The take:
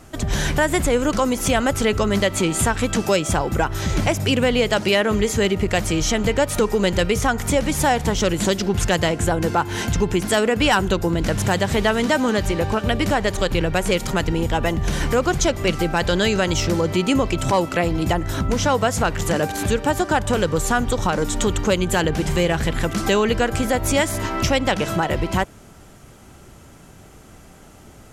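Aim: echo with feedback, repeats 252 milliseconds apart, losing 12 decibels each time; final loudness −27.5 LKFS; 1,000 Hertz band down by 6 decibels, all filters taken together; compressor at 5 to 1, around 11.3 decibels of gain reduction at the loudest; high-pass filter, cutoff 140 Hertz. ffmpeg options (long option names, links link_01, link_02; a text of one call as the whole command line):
ffmpeg -i in.wav -af "highpass=140,equalizer=frequency=1000:width_type=o:gain=-8.5,acompressor=threshold=-29dB:ratio=5,aecho=1:1:252|504|756:0.251|0.0628|0.0157,volume=4dB" out.wav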